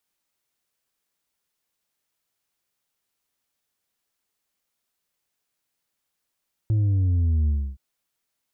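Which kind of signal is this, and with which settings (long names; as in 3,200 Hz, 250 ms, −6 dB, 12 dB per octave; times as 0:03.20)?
bass drop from 110 Hz, over 1.07 s, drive 4 dB, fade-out 0.29 s, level −18.5 dB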